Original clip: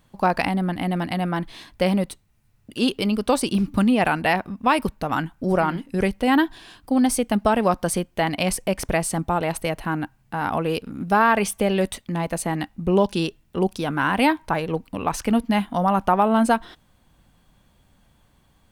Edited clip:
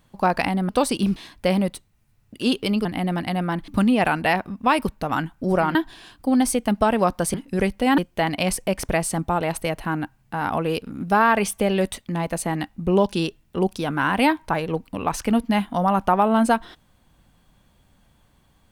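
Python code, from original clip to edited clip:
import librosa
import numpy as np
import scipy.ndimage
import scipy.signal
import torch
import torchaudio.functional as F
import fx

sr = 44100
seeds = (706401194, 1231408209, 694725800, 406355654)

y = fx.edit(x, sr, fx.swap(start_s=0.69, length_s=0.83, other_s=3.21, other_length_s=0.47),
    fx.move(start_s=5.75, length_s=0.64, to_s=7.98), tone=tone)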